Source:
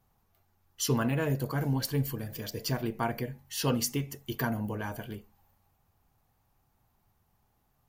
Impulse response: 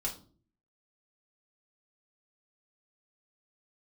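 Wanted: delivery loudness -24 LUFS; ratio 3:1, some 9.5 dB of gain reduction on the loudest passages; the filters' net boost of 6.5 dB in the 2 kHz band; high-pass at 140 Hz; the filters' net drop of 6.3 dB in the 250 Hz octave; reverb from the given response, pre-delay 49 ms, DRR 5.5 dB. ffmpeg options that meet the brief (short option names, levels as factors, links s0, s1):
-filter_complex "[0:a]highpass=140,equalizer=f=250:t=o:g=-7,equalizer=f=2000:t=o:g=9,acompressor=threshold=0.0126:ratio=3,asplit=2[s0][s1];[1:a]atrim=start_sample=2205,adelay=49[s2];[s1][s2]afir=irnorm=-1:irlink=0,volume=0.422[s3];[s0][s3]amix=inputs=2:normalize=0,volume=5.62"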